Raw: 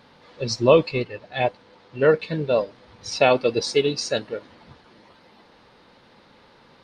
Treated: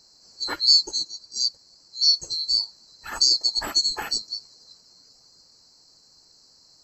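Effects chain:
neighbouring bands swapped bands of 4,000 Hz
level −2.5 dB

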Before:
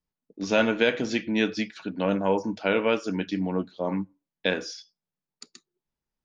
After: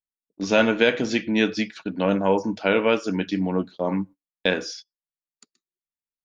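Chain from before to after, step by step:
noise gate −42 dBFS, range −24 dB
level +3.5 dB

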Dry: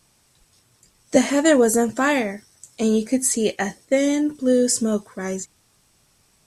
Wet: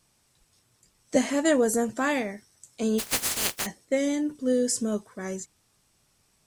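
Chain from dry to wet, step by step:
0:02.98–0:03.65: compressing power law on the bin magnitudes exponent 0.13
level −6.5 dB

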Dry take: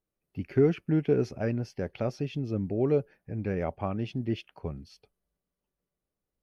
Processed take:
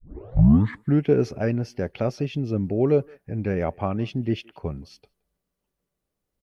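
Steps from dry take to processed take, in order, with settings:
turntable start at the beginning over 1.01 s
far-end echo of a speakerphone 170 ms, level −26 dB
level +5.5 dB

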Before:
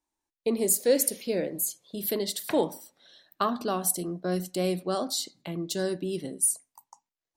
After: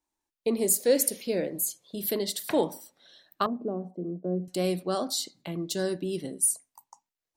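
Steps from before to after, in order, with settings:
0:03.46–0:04.48: Chebyshev band-pass filter 170–510 Hz, order 2

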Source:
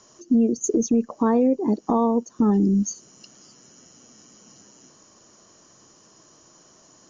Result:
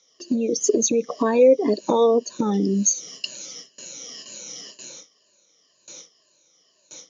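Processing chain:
rippled gain that drifts along the octave scale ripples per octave 1.4, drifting −2 Hz, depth 14 dB
noise gate with hold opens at −39 dBFS
high shelf with overshoot 1,800 Hz +7 dB, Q 1.5
downward compressor 4 to 1, threshold −19 dBFS, peak gain reduction 6.5 dB
loudspeaker in its box 210–6,300 Hz, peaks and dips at 230 Hz −7 dB, 340 Hz −4 dB, 540 Hz +7 dB, 810 Hz −7 dB, 1,400 Hz −4 dB, 3,700 Hz +6 dB
level +6.5 dB

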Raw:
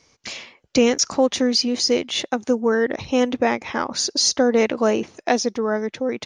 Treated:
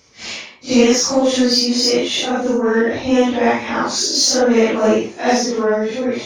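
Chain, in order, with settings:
random phases in long frames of 200 ms
in parallel at −6.5 dB: soft clipping −19 dBFS, distortion −10 dB
on the sum: level +2.5 dB

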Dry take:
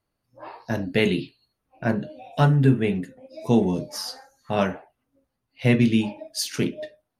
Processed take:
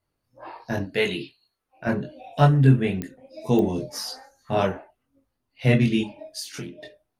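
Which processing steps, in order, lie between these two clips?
0:00.83–0:01.87: low-shelf EQ 330 Hz −11 dB
0:06.01–0:06.83: downward compressor 12 to 1, threshold −31 dBFS, peak gain reduction 13 dB
multi-voice chorus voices 4, 0.85 Hz, delay 22 ms, depth 1.7 ms
digital clicks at 0:03.02/0:03.59, −19 dBFS
level +3 dB

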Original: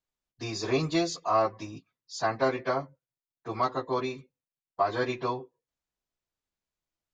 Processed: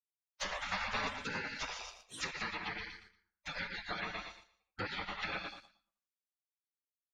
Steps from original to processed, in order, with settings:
noise gate with hold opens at −48 dBFS
feedback echo with a low-pass in the loop 82 ms, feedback 32%, low-pass 1,400 Hz, level −11 dB
downward compressor 3 to 1, threshold −34 dBFS, peak gain reduction 11 dB
repeating echo 116 ms, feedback 32%, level −5.5 dB
gate on every frequency bin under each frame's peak −25 dB weak
leveller curve on the samples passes 1
treble cut that deepens with the level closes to 2,100 Hz, closed at −46 dBFS
0:02.57–0:05.23: high-shelf EQ 4,200 Hz −8.5 dB
level +14.5 dB

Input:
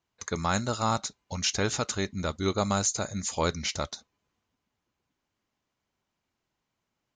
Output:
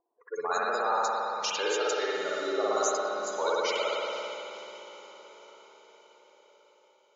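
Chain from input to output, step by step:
spectral dynamics exaggerated over time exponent 1.5
low-pass that shuts in the quiet parts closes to 770 Hz, open at −28 dBFS
Chebyshev high-pass filter 410 Hz, order 3
gate on every frequency bin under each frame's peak −15 dB strong
brickwall limiter −21.5 dBFS, peak gain reduction 6 dB
spring reverb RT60 3 s, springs 56 ms, chirp 70 ms, DRR −7.5 dB
upward compression, threshold −51 dBFS
low-pass that shuts in the quiet parts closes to 950 Hz, open at −40 dBFS
on a send: feedback delay with all-pass diffusion 518 ms, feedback 58%, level −14 dB

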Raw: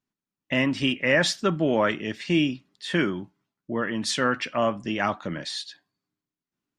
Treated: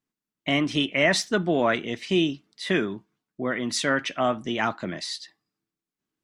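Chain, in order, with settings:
wrong playback speed 44.1 kHz file played as 48 kHz

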